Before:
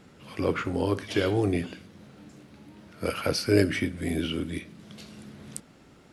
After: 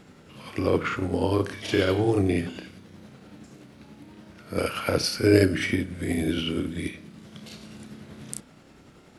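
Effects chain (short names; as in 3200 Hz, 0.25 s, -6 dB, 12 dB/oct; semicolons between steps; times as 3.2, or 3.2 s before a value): granular stretch 1.5×, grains 0.191 s; gain +3.5 dB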